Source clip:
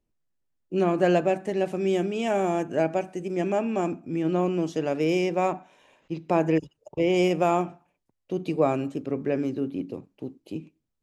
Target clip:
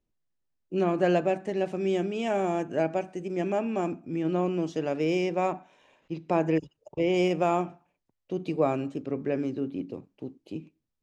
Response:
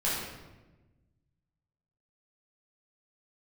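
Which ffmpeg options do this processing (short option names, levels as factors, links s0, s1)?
-af "lowpass=7300,volume=0.75"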